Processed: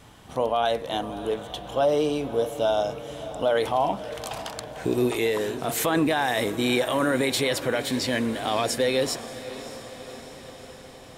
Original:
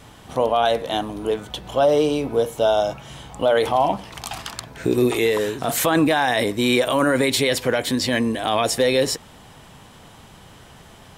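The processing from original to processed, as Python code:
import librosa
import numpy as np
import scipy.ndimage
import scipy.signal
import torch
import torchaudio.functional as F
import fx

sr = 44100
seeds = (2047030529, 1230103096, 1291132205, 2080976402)

y = fx.echo_diffused(x, sr, ms=589, feedback_pct=64, wet_db=-14.0)
y = y * 10.0 ** (-5.0 / 20.0)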